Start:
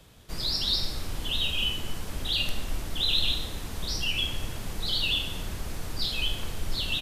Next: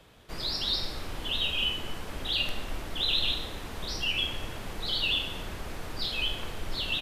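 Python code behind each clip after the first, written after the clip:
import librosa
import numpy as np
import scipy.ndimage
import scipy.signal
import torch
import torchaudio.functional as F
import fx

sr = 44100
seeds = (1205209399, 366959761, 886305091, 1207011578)

y = fx.bass_treble(x, sr, bass_db=-7, treble_db=-9)
y = F.gain(torch.from_numpy(y), 2.0).numpy()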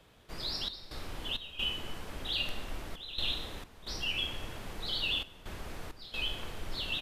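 y = fx.step_gate(x, sr, bpm=66, pattern='xxx.xx.xxx', floor_db=-12.0, edge_ms=4.5)
y = F.gain(torch.from_numpy(y), -4.5).numpy()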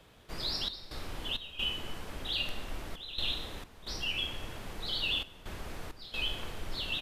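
y = fx.rider(x, sr, range_db=3, speed_s=2.0)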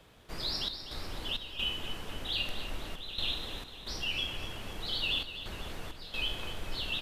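y = fx.echo_feedback(x, sr, ms=249, feedback_pct=54, wet_db=-11.5)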